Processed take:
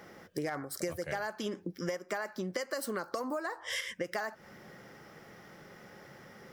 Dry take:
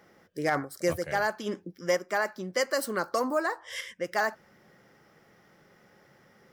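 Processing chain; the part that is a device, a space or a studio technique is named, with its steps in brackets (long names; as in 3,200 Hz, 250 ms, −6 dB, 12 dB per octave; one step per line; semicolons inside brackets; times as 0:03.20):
serial compression, leveller first (downward compressor 2.5 to 1, threshold −31 dBFS, peak gain reduction 7 dB; downward compressor 6 to 1, threshold −40 dBFS, peak gain reduction 12.5 dB)
level +7 dB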